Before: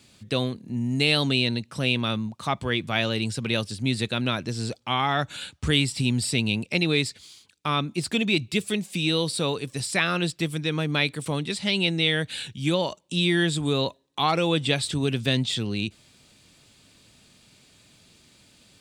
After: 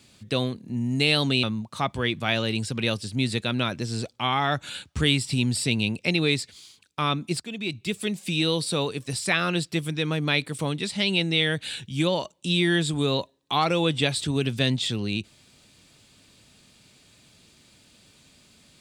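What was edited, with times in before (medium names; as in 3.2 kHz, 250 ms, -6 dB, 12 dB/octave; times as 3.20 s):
1.43–2.10 s: delete
8.07–8.89 s: fade in, from -15.5 dB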